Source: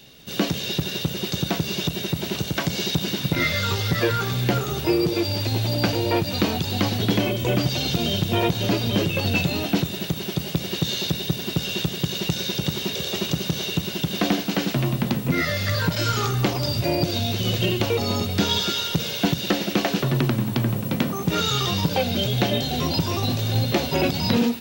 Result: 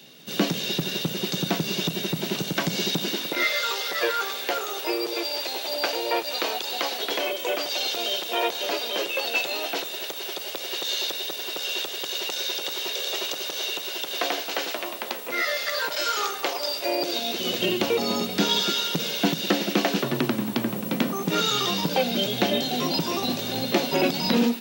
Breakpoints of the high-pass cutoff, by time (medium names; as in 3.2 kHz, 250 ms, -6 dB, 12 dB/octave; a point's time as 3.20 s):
high-pass 24 dB/octave
2.85 s 160 Hz
3.53 s 450 Hz
16.74 s 450 Hz
17.77 s 190 Hz